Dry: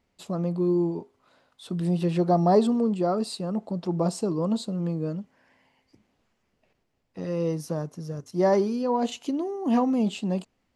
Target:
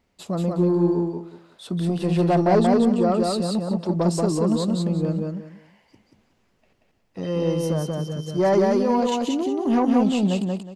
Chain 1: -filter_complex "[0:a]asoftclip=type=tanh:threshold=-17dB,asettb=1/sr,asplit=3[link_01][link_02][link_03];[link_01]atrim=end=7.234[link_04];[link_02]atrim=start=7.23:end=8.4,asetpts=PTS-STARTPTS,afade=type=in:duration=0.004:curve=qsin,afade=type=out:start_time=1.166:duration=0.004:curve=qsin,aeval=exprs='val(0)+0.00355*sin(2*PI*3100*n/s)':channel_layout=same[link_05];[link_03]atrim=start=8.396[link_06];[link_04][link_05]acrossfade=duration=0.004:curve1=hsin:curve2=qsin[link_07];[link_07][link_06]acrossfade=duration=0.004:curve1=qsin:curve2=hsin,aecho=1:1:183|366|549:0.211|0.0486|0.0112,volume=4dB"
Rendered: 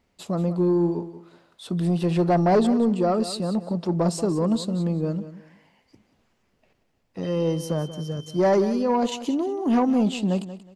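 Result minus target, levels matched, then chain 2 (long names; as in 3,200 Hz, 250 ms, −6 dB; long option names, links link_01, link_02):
echo-to-direct −11 dB
-filter_complex "[0:a]asoftclip=type=tanh:threshold=-17dB,asettb=1/sr,asplit=3[link_01][link_02][link_03];[link_01]atrim=end=7.234[link_04];[link_02]atrim=start=7.23:end=8.4,asetpts=PTS-STARTPTS,afade=type=in:duration=0.004:curve=qsin,afade=type=out:start_time=1.166:duration=0.004:curve=qsin,aeval=exprs='val(0)+0.00355*sin(2*PI*3100*n/s)':channel_layout=same[link_05];[link_03]atrim=start=8.396[link_06];[link_04][link_05]acrossfade=duration=0.004:curve1=hsin:curve2=qsin[link_07];[link_07][link_06]acrossfade=duration=0.004:curve1=qsin:curve2=hsin,aecho=1:1:183|366|549:0.75|0.172|0.0397,volume=4dB"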